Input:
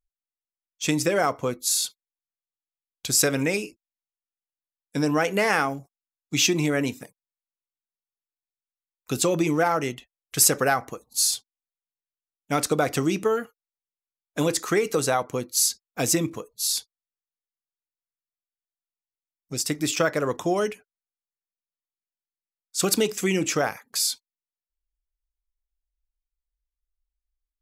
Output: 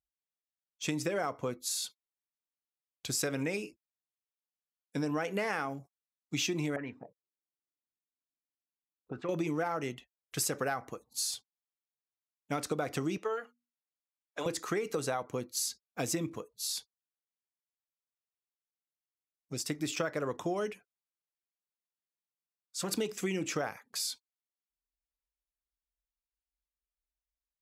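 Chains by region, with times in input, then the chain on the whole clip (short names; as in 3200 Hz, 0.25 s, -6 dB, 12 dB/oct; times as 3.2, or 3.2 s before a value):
6.76–9.29 compressor 1.5:1, threshold -44 dBFS + envelope low-pass 300–1900 Hz up, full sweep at -30 dBFS
13.17–14.46 three-band isolator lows -20 dB, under 400 Hz, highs -12 dB, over 6800 Hz + notches 60/120/180/240/300 Hz
20.72–22.93 comb 5.8 ms, depth 69% + compressor 2:1, threshold -24 dBFS + core saturation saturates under 880 Hz
whole clip: HPF 54 Hz; high shelf 5100 Hz -6.5 dB; compressor 3:1, threshold -24 dBFS; gain -6 dB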